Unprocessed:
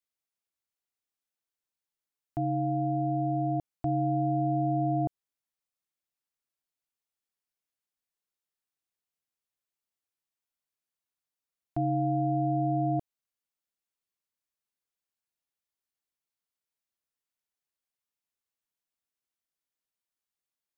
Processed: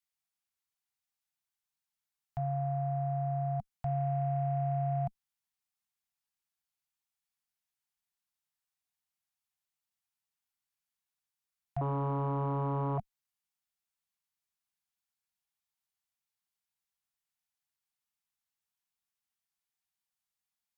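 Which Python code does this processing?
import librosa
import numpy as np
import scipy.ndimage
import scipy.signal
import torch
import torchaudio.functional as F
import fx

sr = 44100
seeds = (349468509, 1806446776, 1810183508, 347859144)

y = fx.cheby_harmonics(x, sr, harmonics=(2, 3, 5, 6), levels_db=(-35, -37, -35, -41), full_scale_db=-19.0)
y = scipy.signal.sosfilt(scipy.signal.ellip(3, 1.0, 40, [210.0, 740.0], 'bandstop', fs=sr, output='sos'), y)
y = fx.doppler_dist(y, sr, depth_ms=0.75, at=(11.81, 12.98))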